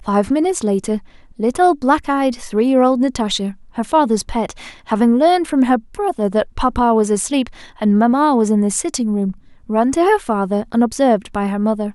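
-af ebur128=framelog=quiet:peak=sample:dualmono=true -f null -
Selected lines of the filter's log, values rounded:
Integrated loudness:
  I:         -13.7 LUFS
  Threshold: -23.9 LUFS
Loudness range:
  LRA:         0.9 LU
  Threshold: -33.8 LUFS
  LRA low:   -14.3 LUFS
  LRA high:  -13.4 LUFS
Sample peak:
  Peak:       -2.0 dBFS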